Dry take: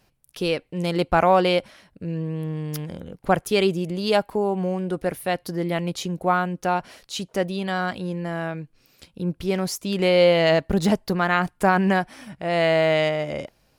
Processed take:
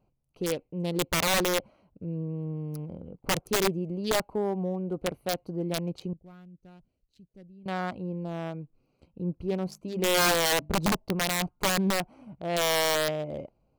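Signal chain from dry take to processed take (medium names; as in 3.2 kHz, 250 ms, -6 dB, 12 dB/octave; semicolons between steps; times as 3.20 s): local Wiener filter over 25 samples; 6.13–7.66 s: amplifier tone stack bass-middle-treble 10-0-1; 9.47–10.75 s: hum notches 50/100/150/200/250/300 Hz; integer overflow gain 13 dB; trim -5 dB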